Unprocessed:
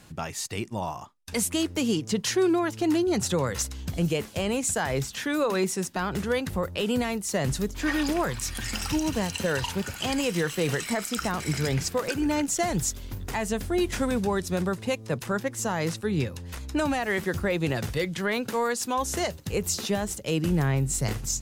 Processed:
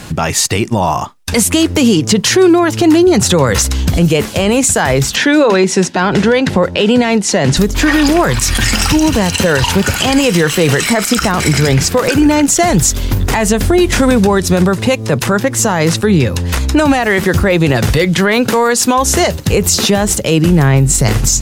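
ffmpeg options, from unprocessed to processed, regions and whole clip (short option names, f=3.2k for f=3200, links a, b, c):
-filter_complex "[0:a]asettb=1/sr,asplit=3[a][b][c];[a]atrim=end=5.164[d];[b]atrim=start=5.16:end=7.57,asetpts=PTS-STARTPTS,afade=t=in:d=0.004:c=qsin,afade=t=out:st=2.406:d=0.004:c=qsin,highpass=150,lowpass=5.8k,bandreject=f=1.2k:w=7.3[e];[c]atrim=start=7.566[f];[d][e]acrossfade=d=0.004:c1=hsin:c2=qsin[g];[g][f]acrossfade=d=0.004:c1=qsin:c2=hsin,highshelf=f=9.4k:g=-3.5,acompressor=threshold=-27dB:ratio=6,alimiter=level_in=23.5dB:limit=-1dB:release=50:level=0:latency=1,volume=-1dB"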